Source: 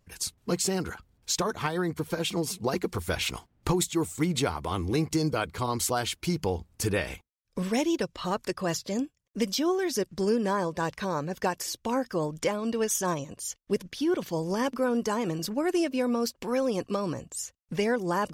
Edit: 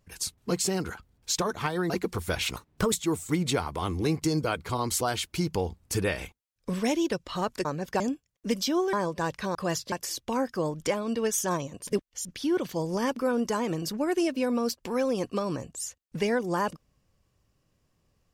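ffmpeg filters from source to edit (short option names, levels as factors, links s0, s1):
-filter_complex "[0:a]asplit=11[s0][s1][s2][s3][s4][s5][s6][s7][s8][s9][s10];[s0]atrim=end=1.902[s11];[s1]atrim=start=2.698:end=3.364[s12];[s2]atrim=start=3.36:end=3.81,asetpts=PTS-STARTPTS,asetrate=55125,aresample=44100[s13];[s3]atrim=start=3.806:end=8.542[s14];[s4]atrim=start=11.138:end=11.492[s15];[s5]atrim=start=8.908:end=9.842[s16];[s6]atrim=start=10.518:end=11.142[s17];[s7]atrim=start=8.538:end=8.912[s18];[s8]atrim=start=11.488:end=13.442[s19];[s9]atrim=start=13.438:end=13.822,asetpts=PTS-STARTPTS,areverse[s20];[s10]atrim=start=13.818[s21];[s11][s12]acrossfade=d=0.004:c1=hsin:c2=hsin[s22];[s22][s13]acrossfade=d=0.004:c1=hsin:c2=hsin[s23];[s23][s14]acrossfade=d=0.004:c1=hsin:c2=hsin[s24];[s24][s15]acrossfade=d=0.004:c1=hsin:c2=hsin[s25];[s25][s16]acrossfade=d=0.004:c1=hsin:c2=hsin[s26];[s26][s17]acrossfade=d=0.004:c1=hsin:c2=hsin[s27];[s27][s18]acrossfade=d=0.004:c1=hsin:c2=hsin[s28];[s28][s19]acrossfade=d=0.004:c1=hsin:c2=hsin[s29];[s29][s20]acrossfade=d=0.004:c1=hsin:c2=hsin[s30];[s30][s21]acrossfade=d=0.004:c1=hsin:c2=hsin"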